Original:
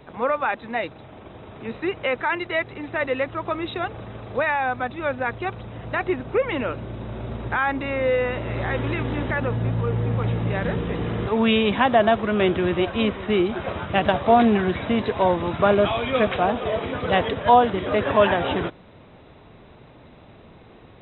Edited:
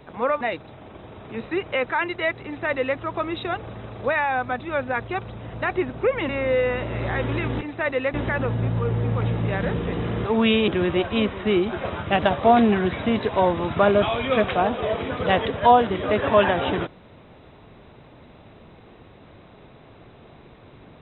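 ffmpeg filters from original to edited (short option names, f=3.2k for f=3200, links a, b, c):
-filter_complex "[0:a]asplit=6[a][b][c][d][e][f];[a]atrim=end=0.412[g];[b]atrim=start=0.718:end=6.602[h];[c]atrim=start=7.838:end=9.162[i];[d]atrim=start=2.758:end=3.292[j];[e]atrim=start=9.158:end=11.702[k];[f]atrim=start=12.508[l];[g][h]acrossfade=d=0.004:c1=hsin:c2=hsin[m];[m][i]acrossfade=d=0.004:c1=hsin:c2=hsin[n];[n][j]acrossfade=d=0.004:c1=hsin:c2=hsin[o];[o][k]acrossfade=d=0.004:c1=hsin:c2=hsin[p];[p][l]acrossfade=d=0.004:c1=hsin:c2=hsin"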